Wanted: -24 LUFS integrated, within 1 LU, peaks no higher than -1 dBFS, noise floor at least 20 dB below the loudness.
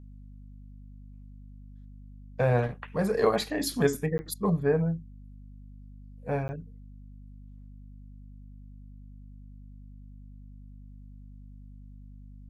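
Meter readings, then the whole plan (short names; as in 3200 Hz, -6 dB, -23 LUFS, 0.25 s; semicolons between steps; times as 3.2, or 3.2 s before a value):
dropouts 2; longest dropout 10 ms; hum 50 Hz; harmonics up to 250 Hz; hum level -45 dBFS; loudness -28.5 LUFS; peak -10.5 dBFS; loudness target -24.0 LUFS
-> interpolate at 4.18/6.48, 10 ms; de-hum 50 Hz, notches 5; gain +4.5 dB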